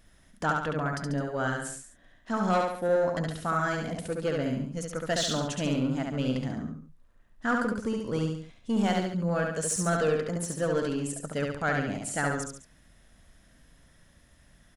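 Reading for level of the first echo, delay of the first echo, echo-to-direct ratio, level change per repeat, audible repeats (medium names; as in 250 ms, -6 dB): -3.0 dB, 70 ms, -2.0 dB, -6.5 dB, 3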